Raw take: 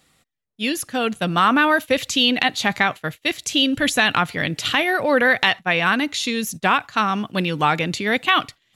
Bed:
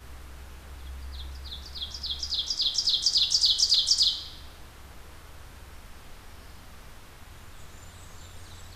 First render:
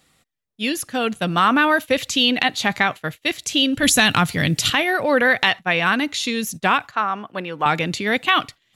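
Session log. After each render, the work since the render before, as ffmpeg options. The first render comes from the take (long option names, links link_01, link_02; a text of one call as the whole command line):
ffmpeg -i in.wav -filter_complex "[0:a]asettb=1/sr,asplit=3[link_01][link_02][link_03];[link_01]atrim=end=3.834[link_04];[link_02]atrim=start=3.83:end=4.7,asetpts=PTS-STARTPTS,afade=type=in:duration=0.004:curve=qsin,afade=type=out:start_time=0.866:duration=0.004:curve=qsin,bass=frequency=250:gain=9,treble=frequency=4000:gain=10[link_05];[link_03]atrim=start=4.696[link_06];[link_04][link_05]acrossfade=duration=0.004:curve1=hsin:curve2=qsin[link_07];[link_07][link_06]acrossfade=duration=0.004:curve1=qsin:curve2=hsin,asettb=1/sr,asplit=3[link_08][link_09][link_10];[link_08]atrim=end=6.914[link_11];[link_09]atrim=start=6.91:end=7.66,asetpts=PTS-STARTPTS,afade=type=in:duration=0.004:curve=qsin,afade=type=out:start_time=0.746:duration=0.004:curve=qsin,acrossover=split=410 2100:gain=0.251 1 0.2[link_12][link_13][link_14];[link_12][link_13][link_14]amix=inputs=3:normalize=0[link_15];[link_10]atrim=start=7.656[link_16];[link_11][link_15]acrossfade=duration=0.004:curve1=hsin:curve2=qsin[link_17];[link_17][link_16]acrossfade=duration=0.004:curve1=qsin:curve2=hsin" out.wav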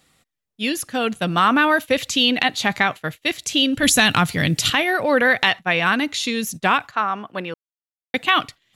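ffmpeg -i in.wav -filter_complex "[0:a]asplit=3[link_01][link_02][link_03];[link_01]atrim=end=7.54,asetpts=PTS-STARTPTS,afade=type=out:start_time=7.536:duration=0.004:curve=hsin[link_04];[link_02]atrim=start=7.54:end=8.14,asetpts=PTS-STARTPTS,volume=0[link_05];[link_03]atrim=start=8.14,asetpts=PTS-STARTPTS,afade=type=in:duration=0.004:curve=hsin[link_06];[link_04][link_05][link_06]concat=n=3:v=0:a=1" out.wav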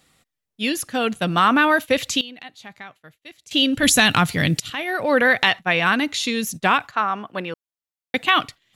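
ffmpeg -i in.wav -filter_complex "[0:a]asplit=4[link_01][link_02][link_03][link_04];[link_01]atrim=end=2.21,asetpts=PTS-STARTPTS,afade=type=out:start_time=2.09:duration=0.12:curve=log:silence=0.1[link_05];[link_02]atrim=start=2.21:end=3.51,asetpts=PTS-STARTPTS,volume=-20dB[link_06];[link_03]atrim=start=3.51:end=4.6,asetpts=PTS-STARTPTS,afade=type=in:duration=0.12:curve=log:silence=0.1,afade=type=out:start_time=1.086:duration=0.004:curve=hsin:silence=0.0707946[link_07];[link_04]atrim=start=4.6,asetpts=PTS-STARTPTS,afade=type=in:duration=0.56:silence=0.0707946[link_08];[link_05][link_06][link_07][link_08]concat=n=4:v=0:a=1" out.wav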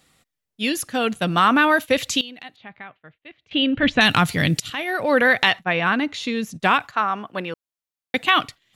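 ffmpeg -i in.wav -filter_complex "[0:a]asettb=1/sr,asplit=3[link_01][link_02][link_03];[link_01]atrim=end=2.564[link_04];[link_02]atrim=start=2.56:end=4.01,asetpts=PTS-STARTPTS,afade=type=in:duration=0.004:curve=qsin,afade=type=out:start_time=1.446:duration=0.004:curve=qsin,lowpass=frequency=3000:width=0.5412,lowpass=frequency=3000:width=1.3066[link_05];[link_03]atrim=start=4.006[link_06];[link_04][link_05]acrossfade=duration=0.004:curve1=hsin:curve2=qsin[link_07];[link_07][link_06]acrossfade=duration=0.004:curve1=qsin:curve2=hsin,asettb=1/sr,asplit=3[link_08][link_09][link_10];[link_08]atrim=end=5.644[link_11];[link_09]atrim=start=5.64:end=6.6,asetpts=PTS-STARTPTS,afade=type=in:duration=0.004:curve=qsin,afade=type=out:start_time=0.956:duration=0.004:curve=qsin,aemphasis=mode=reproduction:type=75kf[link_12];[link_10]atrim=start=6.596[link_13];[link_11][link_12]acrossfade=duration=0.004:curve1=hsin:curve2=qsin[link_14];[link_14][link_13]acrossfade=duration=0.004:curve1=qsin:curve2=hsin" out.wav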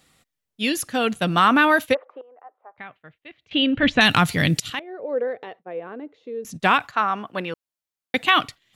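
ffmpeg -i in.wav -filter_complex "[0:a]asplit=3[link_01][link_02][link_03];[link_01]afade=type=out:start_time=1.93:duration=0.02[link_04];[link_02]asuperpass=centerf=740:order=8:qfactor=0.87,afade=type=in:start_time=1.93:duration=0.02,afade=type=out:start_time=2.77:duration=0.02[link_05];[link_03]afade=type=in:start_time=2.77:duration=0.02[link_06];[link_04][link_05][link_06]amix=inputs=3:normalize=0,asettb=1/sr,asplit=3[link_07][link_08][link_09];[link_07]atrim=end=4.794[link_10];[link_08]atrim=start=4.79:end=6.45,asetpts=PTS-STARTPTS,afade=type=in:duration=0.004:curve=qsin,afade=type=out:start_time=1.656:duration=0.004:curve=qsin,bandpass=frequency=450:width_type=q:width=4.6[link_11];[link_09]atrim=start=6.446[link_12];[link_10][link_11]acrossfade=duration=0.004:curve1=hsin:curve2=qsin[link_13];[link_13][link_12]acrossfade=duration=0.004:curve1=qsin:curve2=hsin" out.wav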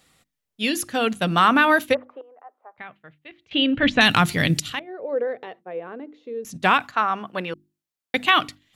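ffmpeg -i in.wav -af "bandreject=frequency=50:width_type=h:width=6,bandreject=frequency=100:width_type=h:width=6,bandreject=frequency=150:width_type=h:width=6,bandreject=frequency=200:width_type=h:width=6,bandreject=frequency=250:width_type=h:width=6,bandreject=frequency=300:width_type=h:width=6,bandreject=frequency=350:width_type=h:width=6" out.wav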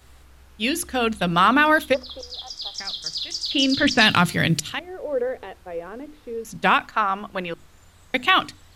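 ffmpeg -i in.wav -i bed.wav -filter_complex "[1:a]volume=-6dB[link_01];[0:a][link_01]amix=inputs=2:normalize=0" out.wav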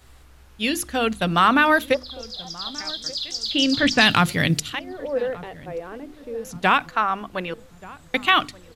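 ffmpeg -i in.wav -filter_complex "[0:a]asplit=2[link_01][link_02];[link_02]adelay=1181,lowpass=frequency=1000:poles=1,volume=-19dB,asplit=2[link_03][link_04];[link_04]adelay=1181,lowpass=frequency=1000:poles=1,volume=0.47,asplit=2[link_05][link_06];[link_06]adelay=1181,lowpass=frequency=1000:poles=1,volume=0.47,asplit=2[link_07][link_08];[link_08]adelay=1181,lowpass=frequency=1000:poles=1,volume=0.47[link_09];[link_01][link_03][link_05][link_07][link_09]amix=inputs=5:normalize=0" out.wav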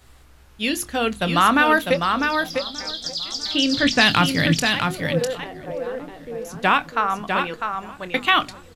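ffmpeg -i in.wav -filter_complex "[0:a]asplit=2[link_01][link_02];[link_02]adelay=25,volume=-13dB[link_03];[link_01][link_03]amix=inputs=2:normalize=0,aecho=1:1:651:0.562" out.wav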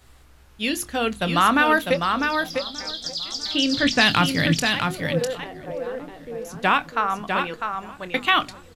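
ffmpeg -i in.wav -af "volume=-1.5dB" out.wav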